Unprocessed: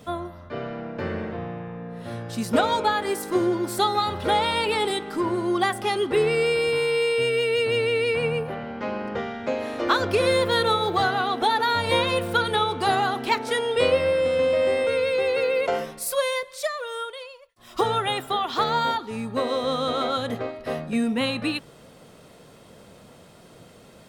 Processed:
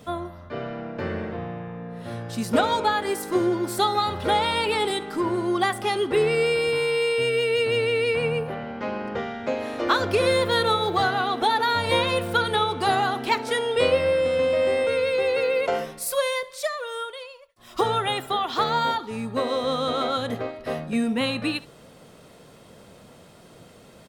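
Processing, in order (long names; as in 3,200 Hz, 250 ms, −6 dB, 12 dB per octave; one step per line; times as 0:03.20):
single-tap delay 70 ms −20.5 dB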